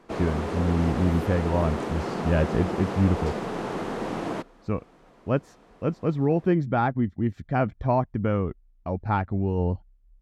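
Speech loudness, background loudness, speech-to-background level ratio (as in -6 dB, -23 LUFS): -26.5 LUFS, -31.0 LUFS, 4.5 dB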